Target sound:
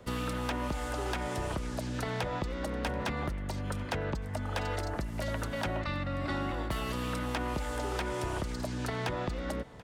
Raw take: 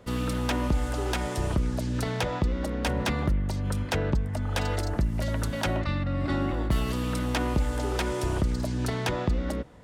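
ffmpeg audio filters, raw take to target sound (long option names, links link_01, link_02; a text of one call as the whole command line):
ffmpeg -i in.wav -filter_complex "[0:a]acrossover=split=270|540|2900[link_01][link_02][link_03][link_04];[link_01]acompressor=threshold=-36dB:ratio=4[link_05];[link_02]acompressor=threshold=-43dB:ratio=4[link_06];[link_03]acompressor=threshold=-34dB:ratio=4[link_07];[link_04]acompressor=threshold=-46dB:ratio=4[link_08];[link_05][link_06][link_07][link_08]amix=inputs=4:normalize=0,aecho=1:1:734:0.0841" out.wav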